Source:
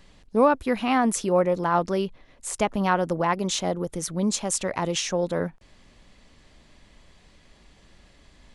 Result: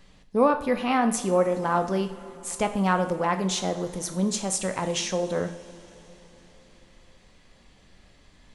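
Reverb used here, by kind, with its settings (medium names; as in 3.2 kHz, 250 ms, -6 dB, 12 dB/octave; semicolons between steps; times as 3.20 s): two-slope reverb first 0.52 s, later 4.4 s, from -18 dB, DRR 6 dB; trim -2 dB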